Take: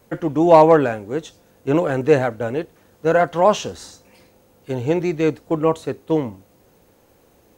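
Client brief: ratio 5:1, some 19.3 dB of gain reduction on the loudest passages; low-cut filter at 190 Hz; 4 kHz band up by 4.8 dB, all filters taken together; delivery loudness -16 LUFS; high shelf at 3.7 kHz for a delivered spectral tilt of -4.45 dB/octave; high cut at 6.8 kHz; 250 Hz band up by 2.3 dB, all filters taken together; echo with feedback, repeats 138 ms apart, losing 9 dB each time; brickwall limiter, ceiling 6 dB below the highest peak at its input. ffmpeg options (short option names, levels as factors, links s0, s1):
-af "highpass=190,lowpass=6800,equalizer=f=250:t=o:g=4.5,highshelf=f=3700:g=3.5,equalizer=f=4000:t=o:g=4.5,acompressor=threshold=0.0398:ratio=5,alimiter=limit=0.0708:level=0:latency=1,aecho=1:1:138|276|414|552:0.355|0.124|0.0435|0.0152,volume=7.94"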